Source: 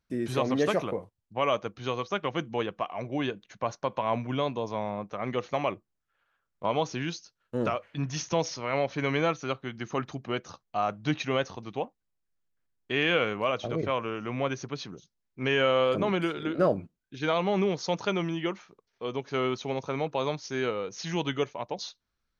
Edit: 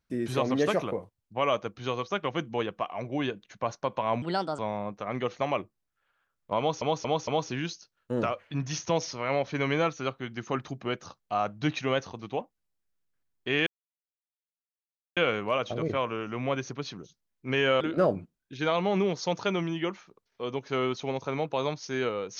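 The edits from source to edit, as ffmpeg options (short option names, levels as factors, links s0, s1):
-filter_complex "[0:a]asplit=8[s0][s1][s2][s3][s4][s5][s6][s7];[s0]atrim=end=4.224[s8];[s1]atrim=start=4.22:end=4.71,asetpts=PTS-STARTPTS,asetrate=59094,aresample=44100,atrim=end_sample=16126,asetpts=PTS-STARTPTS[s9];[s2]atrim=start=4.706:end=6.942[s10];[s3]atrim=start=6.708:end=6.942[s11];[s4]atrim=start=6.708:end=6.942[s12];[s5]atrim=start=6.708:end=13.1,asetpts=PTS-STARTPTS,afade=t=out:st=6.388:d=0.004:c=hsin,apad=pad_dur=1.5[s13];[s6]atrim=start=13.1:end=15.742,asetpts=PTS-STARTPTS,afade=t=in:d=0.004:c=hsin[s14];[s7]atrim=start=16.418[s15];[s8][s9]acrossfade=d=0.004:c1=hsin:c2=hsin[s16];[s16][s10]acrossfade=d=0.004:c1=hsin:c2=hsin[s17];[s17][s11]acrossfade=d=0.004:c1=hsin:c2=hsin[s18];[s18][s12]acrossfade=d=0.004:c1=hsin:c2=hsin[s19];[s13][s14]concat=n=2:v=0:a=1[s20];[s19][s20]acrossfade=d=0.004:c1=hsin:c2=hsin[s21];[s21][s15]acrossfade=d=0.004:c1=hsin:c2=hsin"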